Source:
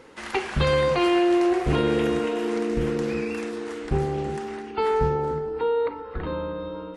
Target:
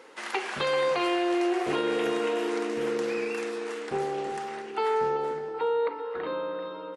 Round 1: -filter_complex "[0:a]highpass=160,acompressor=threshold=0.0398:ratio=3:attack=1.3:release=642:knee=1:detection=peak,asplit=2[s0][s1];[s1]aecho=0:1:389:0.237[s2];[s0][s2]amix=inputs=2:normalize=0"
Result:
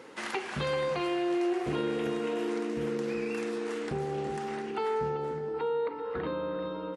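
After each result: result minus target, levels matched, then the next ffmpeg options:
125 Hz band +11.0 dB; compression: peak gain reduction +7 dB
-filter_complex "[0:a]highpass=400,acompressor=threshold=0.0398:ratio=3:attack=1.3:release=642:knee=1:detection=peak,asplit=2[s0][s1];[s1]aecho=0:1:389:0.237[s2];[s0][s2]amix=inputs=2:normalize=0"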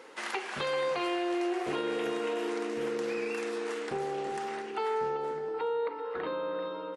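compression: peak gain reduction +5 dB
-filter_complex "[0:a]highpass=400,acompressor=threshold=0.0944:ratio=3:attack=1.3:release=642:knee=1:detection=peak,asplit=2[s0][s1];[s1]aecho=0:1:389:0.237[s2];[s0][s2]amix=inputs=2:normalize=0"

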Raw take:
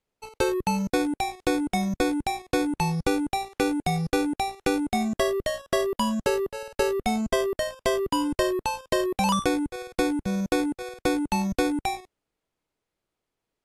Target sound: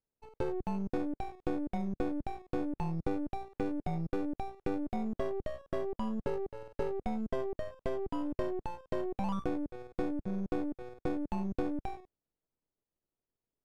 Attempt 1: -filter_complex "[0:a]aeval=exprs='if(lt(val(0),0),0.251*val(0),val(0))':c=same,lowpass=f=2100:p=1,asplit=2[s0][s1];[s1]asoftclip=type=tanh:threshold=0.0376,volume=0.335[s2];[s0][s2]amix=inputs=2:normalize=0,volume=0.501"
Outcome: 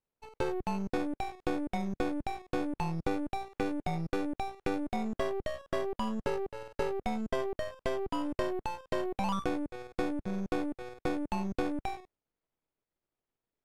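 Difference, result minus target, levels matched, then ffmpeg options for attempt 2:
2 kHz band +6.0 dB
-filter_complex "[0:a]aeval=exprs='if(lt(val(0),0),0.251*val(0),val(0))':c=same,lowpass=f=540:p=1,asplit=2[s0][s1];[s1]asoftclip=type=tanh:threshold=0.0376,volume=0.335[s2];[s0][s2]amix=inputs=2:normalize=0,volume=0.501"

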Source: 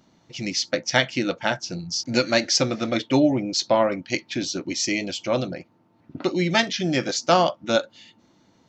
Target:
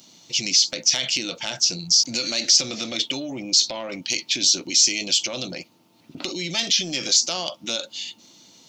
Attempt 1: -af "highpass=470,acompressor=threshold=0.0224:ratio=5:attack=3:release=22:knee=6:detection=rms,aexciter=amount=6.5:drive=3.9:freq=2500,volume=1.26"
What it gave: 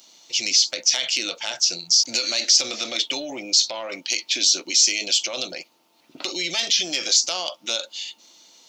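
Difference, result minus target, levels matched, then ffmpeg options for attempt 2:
125 Hz band -12.5 dB
-af "highpass=140,acompressor=threshold=0.0224:ratio=5:attack=3:release=22:knee=6:detection=rms,aexciter=amount=6.5:drive=3.9:freq=2500,volume=1.26"

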